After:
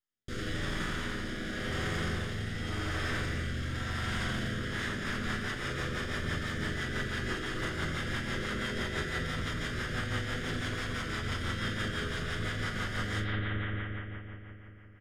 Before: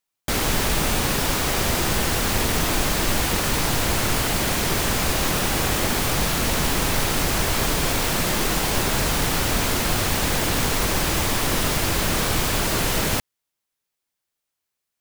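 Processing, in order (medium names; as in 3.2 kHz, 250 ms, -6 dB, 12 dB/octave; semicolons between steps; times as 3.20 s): comb filter that takes the minimum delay 0.59 ms; distance through air 77 m; doubling 38 ms -5 dB; bucket-brigade echo 86 ms, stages 2048, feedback 85%, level -3 dB; wavefolder -10 dBFS; peak limiter -20 dBFS, peak gain reduction 10 dB; chord resonator E2 major, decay 0.24 s; rotary cabinet horn 0.9 Hz, later 6 Hz, at 4.44 s; dynamic bell 1.6 kHz, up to +4 dB, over -54 dBFS, Q 1.1; trim +5 dB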